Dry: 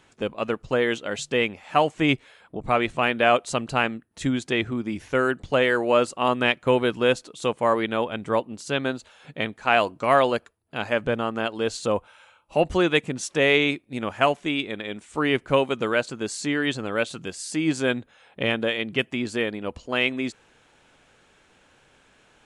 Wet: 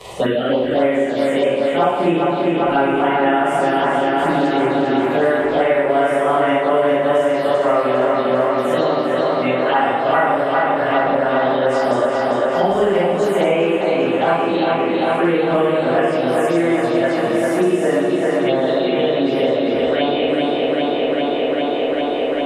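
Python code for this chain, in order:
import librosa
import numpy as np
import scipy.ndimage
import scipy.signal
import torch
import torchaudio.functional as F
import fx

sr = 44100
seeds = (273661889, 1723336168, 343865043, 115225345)

p1 = fx.pitch_bins(x, sr, semitones=2.5)
p2 = fx.high_shelf(p1, sr, hz=2100.0, db=-8.0)
p3 = fx.rev_schroeder(p2, sr, rt60_s=1.0, comb_ms=32, drr_db=-7.0)
p4 = fx.env_phaser(p3, sr, low_hz=260.0, high_hz=4100.0, full_db=-15.5)
p5 = fx.low_shelf(p4, sr, hz=120.0, db=-9.0)
p6 = fx.hum_notches(p5, sr, base_hz=50, count=3)
p7 = p6 + fx.echo_tape(p6, sr, ms=399, feedback_pct=84, wet_db=-4.0, lp_hz=5600.0, drive_db=6.0, wow_cents=16, dry=0)
p8 = fx.band_squash(p7, sr, depth_pct=100)
y = p8 * 10.0 ** (1.5 / 20.0)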